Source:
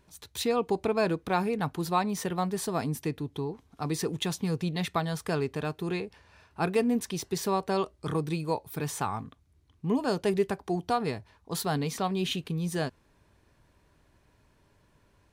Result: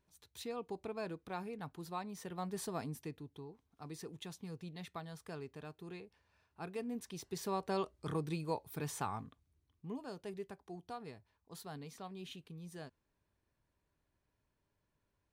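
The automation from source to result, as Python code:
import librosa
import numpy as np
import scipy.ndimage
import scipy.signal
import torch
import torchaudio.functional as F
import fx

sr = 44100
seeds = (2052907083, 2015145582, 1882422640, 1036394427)

y = fx.gain(x, sr, db=fx.line((2.2, -15.5), (2.6, -9.0), (3.45, -17.0), (6.69, -17.0), (7.72, -8.0), (9.23, -8.0), (10.1, -18.5)))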